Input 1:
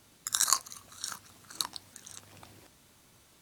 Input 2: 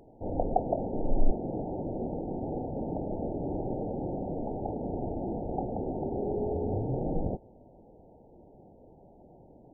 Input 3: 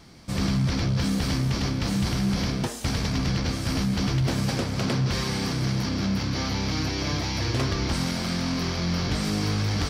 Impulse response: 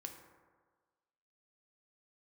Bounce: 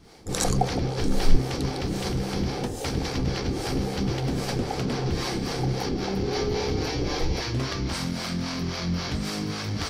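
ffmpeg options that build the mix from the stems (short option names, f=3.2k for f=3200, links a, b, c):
-filter_complex "[0:a]lowpass=11k,volume=-0.5dB[a];[1:a]aecho=1:1:2.4:0.93,adelay=50,volume=2dB[b];[2:a]bandreject=f=50:t=h:w=6,bandreject=f=100:t=h:w=6,volume=1dB[c];[a][b][c]amix=inputs=3:normalize=0,bandreject=f=50:t=h:w=6,bandreject=f=100:t=h:w=6,bandreject=f=150:t=h:w=6,bandreject=f=200:t=h:w=6,acrossover=split=410[d][e];[d]aeval=exprs='val(0)*(1-0.7/2+0.7/2*cos(2*PI*3.7*n/s))':c=same[f];[e]aeval=exprs='val(0)*(1-0.7/2-0.7/2*cos(2*PI*3.7*n/s))':c=same[g];[f][g]amix=inputs=2:normalize=0"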